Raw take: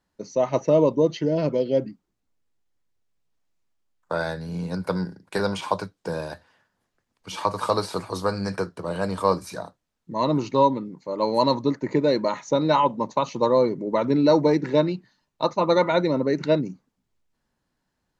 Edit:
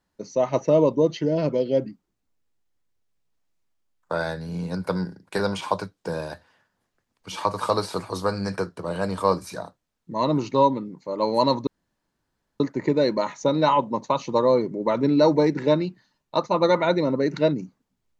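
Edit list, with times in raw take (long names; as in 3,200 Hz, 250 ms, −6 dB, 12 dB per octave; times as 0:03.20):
0:11.67: splice in room tone 0.93 s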